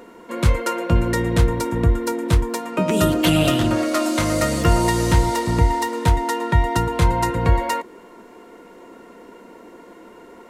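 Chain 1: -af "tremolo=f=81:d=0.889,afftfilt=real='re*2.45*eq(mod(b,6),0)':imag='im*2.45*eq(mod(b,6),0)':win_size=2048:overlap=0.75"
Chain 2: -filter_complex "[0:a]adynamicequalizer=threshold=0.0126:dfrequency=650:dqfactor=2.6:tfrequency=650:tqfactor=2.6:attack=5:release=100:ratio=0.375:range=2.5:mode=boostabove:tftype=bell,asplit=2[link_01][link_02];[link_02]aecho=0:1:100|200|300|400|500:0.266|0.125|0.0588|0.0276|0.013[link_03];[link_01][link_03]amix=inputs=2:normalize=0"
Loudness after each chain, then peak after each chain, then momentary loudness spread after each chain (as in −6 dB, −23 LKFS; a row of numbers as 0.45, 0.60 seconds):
−28.0, −18.5 LKFS; −12.5, −3.5 dBFS; 5, 6 LU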